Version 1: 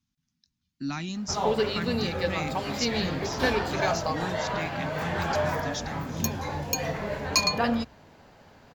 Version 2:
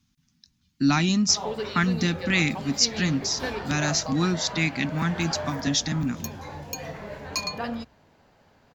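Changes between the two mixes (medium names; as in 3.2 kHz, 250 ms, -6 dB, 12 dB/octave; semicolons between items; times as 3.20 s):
speech +11.5 dB; background -6.0 dB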